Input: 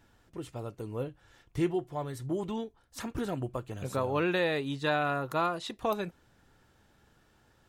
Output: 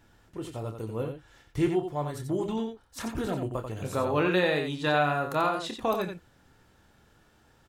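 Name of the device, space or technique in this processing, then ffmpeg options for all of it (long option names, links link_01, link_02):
slapback doubling: -filter_complex "[0:a]asplit=3[link_01][link_02][link_03];[link_02]adelay=27,volume=-8dB[link_04];[link_03]adelay=89,volume=-6.5dB[link_05];[link_01][link_04][link_05]amix=inputs=3:normalize=0,volume=2dB"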